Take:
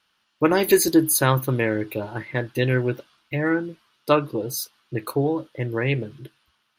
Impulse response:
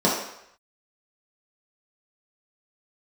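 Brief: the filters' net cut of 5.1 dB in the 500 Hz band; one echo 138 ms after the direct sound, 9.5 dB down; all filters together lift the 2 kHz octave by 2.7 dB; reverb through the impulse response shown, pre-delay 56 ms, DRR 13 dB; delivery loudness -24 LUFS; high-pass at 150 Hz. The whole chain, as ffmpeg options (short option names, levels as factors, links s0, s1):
-filter_complex "[0:a]highpass=150,equalizer=f=500:t=o:g=-7,equalizer=f=2000:t=o:g=4,aecho=1:1:138:0.335,asplit=2[s0][s1];[1:a]atrim=start_sample=2205,adelay=56[s2];[s1][s2]afir=irnorm=-1:irlink=0,volume=0.0282[s3];[s0][s3]amix=inputs=2:normalize=0"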